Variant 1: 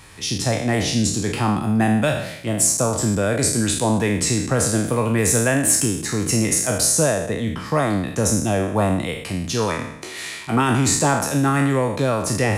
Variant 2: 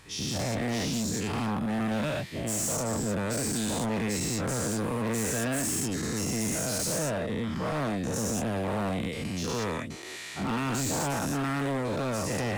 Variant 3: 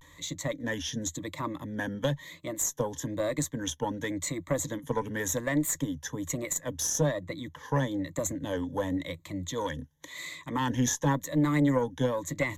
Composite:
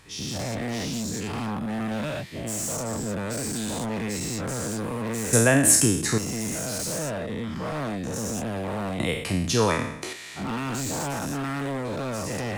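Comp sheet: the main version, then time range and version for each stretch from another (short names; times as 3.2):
2
5.33–6.18 from 1
9–10.13 from 1
not used: 3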